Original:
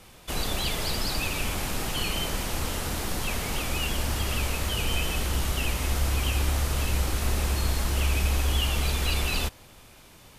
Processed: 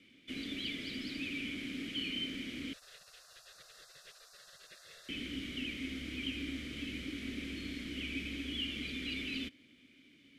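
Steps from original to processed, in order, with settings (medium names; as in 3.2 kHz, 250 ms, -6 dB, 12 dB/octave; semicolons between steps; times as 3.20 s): vowel filter i; 2.73–5.09 s: spectral gate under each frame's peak -25 dB weak; trim +3.5 dB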